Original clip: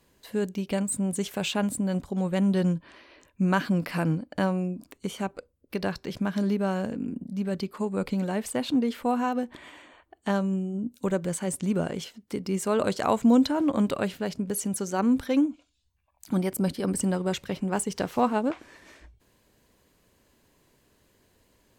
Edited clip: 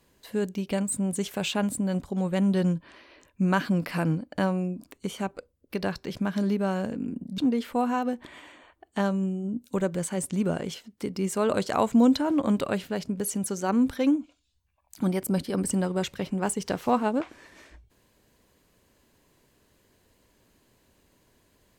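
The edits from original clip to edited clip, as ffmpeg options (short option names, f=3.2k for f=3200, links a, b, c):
-filter_complex "[0:a]asplit=2[a][b];[a]atrim=end=7.382[c];[b]atrim=start=8.678[d];[c][d]acrossfade=d=0.004:c1=hsin:c2=hsin"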